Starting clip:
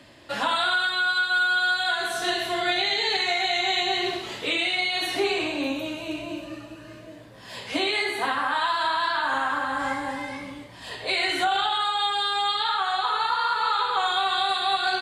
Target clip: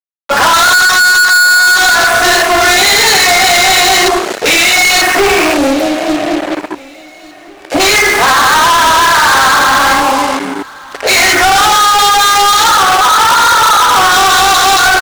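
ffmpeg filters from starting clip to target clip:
ffmpeg -i in.wav -filter_complex "[0:a]afwtdn=0.0355,firequalizer=gain_entry='entry(720,0);entry(1300,4);entry(3200,-9);entry(6000,4)':delay=0.05:min_phase=1,aeval=exprs='0.282*(cos(1*acos(clip(val(0)/0.282,-1,1)))-cos(1*PI/2))+0.0562*(cos(3*acos(clip(val(0)/0.282,-1,1)))-cos(3*PI/2))':channel_layout=same,acrusher=bits=7:mix=0:aa=0.5,asplit=2[link_01][link_02];[link_02]highpass=frequency=720:poles=1,volume=39dB,asoftclip=type=tanh:threshold=-5.5dB[link_03];[link_01][link_03]amix=inputs=2:normalize=0,lowpass=frequency=7900:poles=1,volume=-6dB,aecho=1:1:1148|2296|3444:0.0708|0.0333|0.0156,adynamicequalizer=threshold=0.0562:dfrequency=4200:dqfactor=0.7:tfrequency=4200:tqfactor=0.7:attack=5:release=100:ratio=0.375:range=2.5:mode=boostabove:tftype=highshelf,volume=4.5dB" out.wav

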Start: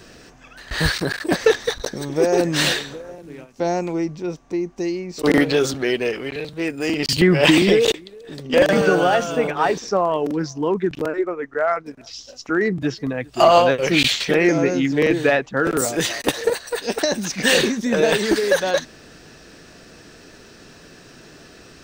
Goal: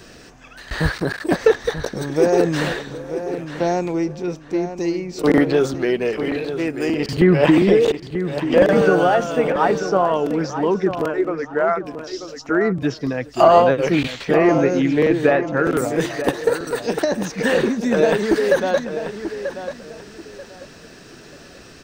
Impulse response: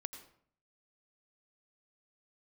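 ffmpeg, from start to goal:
-filter_complex "[0:a]acrossover=split=1700[link_01][link_02];[link_02]acompressor=threshold=-35dB:ratio=6[link_03];[link_01][link_03]amix=inputs=2:normalize=0,asplit=2[link_04][link_05];[link_05]adelay=937,lowpass=frequency=4000:poles=1,volume=-10dB,asplit=2[link_06][link_07];[link_07]adelay=937,lowpass=frequency=4000:poles=1,volume=0.26,asplit=2[link_08][link_09];[link_09]adelay=937,lowpass=frequency=4000:poles=1,volume=0.26[link_10];[link_04][link_06][link_08][link_10]amix=inputs=4:normalize=0,volume=1.5dB"

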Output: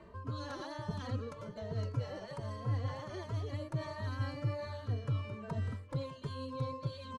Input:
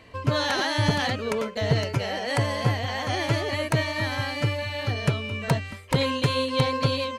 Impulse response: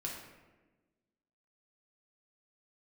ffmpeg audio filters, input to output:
-filter_complex "[0:a]lowpass=9300,highshelf=frequency=1600:width_type=q:width=1.5:gain=-12,aecho=1:1:597|1194|1791|2388:0.1|0.052|0.027|0.0141,areverse,acompressor=threshold=-31dB:ratio=6,areverse,equalizer=frequency=770:width=4.6:gain=-13,acrossover=split=150|3000[link_01][link_02][link_03];[link_02]acompressor=threshold=-43dB:ratio=4[link_04];[link_01][link_04][link_03]amix=inputs=3:normalize=0,asplit=2[link_05][link_06];[link_06]adelay=2.9,afreqshift=1.3[link_07];[link_05][link_07]amix=inputs=2:normalize=1,volume=3.5dB"

